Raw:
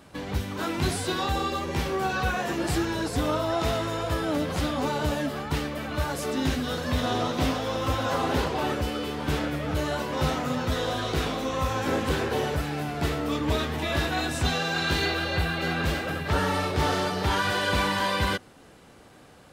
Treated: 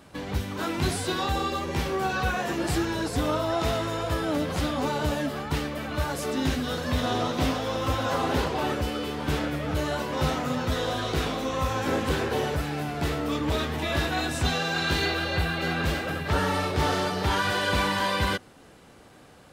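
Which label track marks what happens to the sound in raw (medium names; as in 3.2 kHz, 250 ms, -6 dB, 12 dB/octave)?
12.540000	13.780000	hard clipper -20 dBFS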